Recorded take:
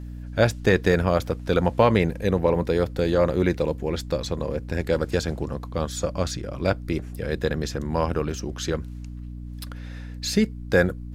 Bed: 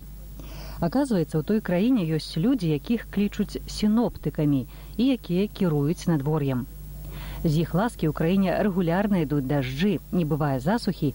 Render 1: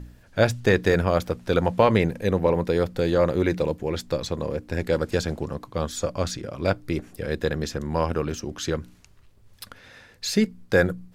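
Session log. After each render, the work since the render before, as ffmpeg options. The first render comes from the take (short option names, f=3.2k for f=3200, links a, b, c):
-af "bandreject=f=60:t=h:w=4,bandreject=f=120:t=h:w=4,bandreject=f=180:t=h:w=4,bandreject=f=240:t=h:w=4,bandreject=f=300:t=h:w=4"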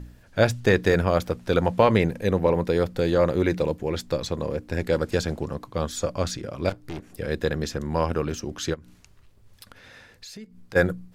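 -filter_complex "[0:a]asettb=1/sr,asplit=3[a][b][c];[a]atrim=end=6.694[d];[b]atrim=start=6.69:end=7.1,asetpts=PTS-STARTPTS,afade=t=in:d=0.004:c=qsin,afade=t=out:st=0.406:d=0.004:c=qsin,aeval=exprs='(tanh(31.6*val(0)+0.75)-tanh(0.75))/31.6':c=same[e];[c]atrim=start=7.096[f];[d][e]acrossfade=d=0.004:c1=hsin:c2=qsin[g];[g][f]acrossfade=d=0.004:c1=qsin:c2=hsin,asplit=3[h][i][j];[h]afade=t=out:st=8.73:d=0.02[k];[i]acompressor=threshold=-42dB:ratio=4:attack=3.2:release=140:knee=1:detection=peak,afade=t=in:st=8.73:d=0.02,afade=t=out:st=10.75:d=0.02[l];[j]afade=t=in:st=10.75:d=0.02[m];[k][l][m]amix=inputs=3:normalize=0"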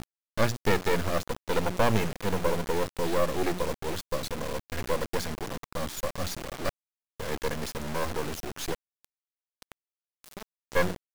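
-af "aresample=16000,asoftclip=type=hard:threshold=-12dB,aresample=44100,acrusher=bits=3:dc=4:mix=0:aa=0.000001"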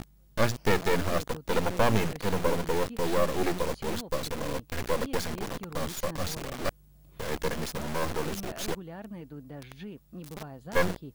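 -filter_complex "[1:a]volume=-19dB[a];[0:a][a]amix=inputs=2:normalize=0"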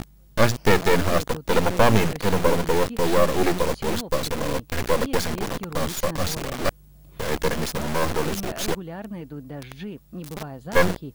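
-af "volume=7dB"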